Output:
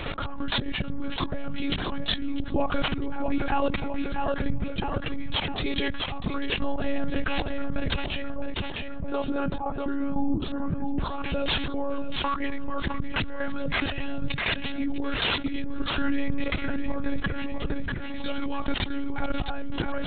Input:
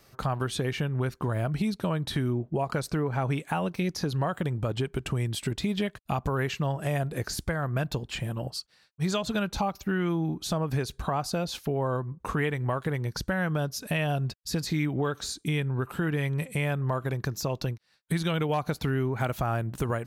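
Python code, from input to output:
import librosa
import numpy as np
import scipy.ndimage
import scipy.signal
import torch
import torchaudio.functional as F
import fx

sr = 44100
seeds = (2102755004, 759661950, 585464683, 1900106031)

y = fx.low_shelf(x, sr, hz=160.0, db=3.5)
y = y + 0.78 * np.pad(y, (int(7.4 * sr / 1000.0), 0))[:len(y)]
y = fx.auto_swell(y, sr, attack_ms=781.0)
y = fx.level_steps(y, sr, step_db=14)
y = fx.lowpass(y, sr, hz=1100.0, slope=12, at=(8.35, 10.97))
y = fx.echo_feedback(y, sr, ms=654, feedback_pct=27, wet_db=-11.0)
y = (np.kron(y[::6], np.eye(6)[0]) * 6)[:len(y)]
y = fx.lpc_monotone(y, sr, seeds[0], pitch_hz=280.0, order=16)
y = fx.env_flatten(y, sr, amount_pct=70)
y = F.gain(torch.from_numpy(y), 5.5).numpy()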